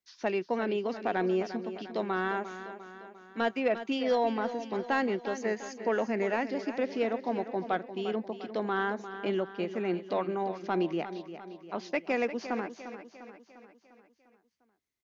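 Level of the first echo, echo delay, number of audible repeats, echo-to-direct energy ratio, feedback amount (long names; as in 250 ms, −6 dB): −11.5 dB, 350 ms, 5, −10.0 dB, 53%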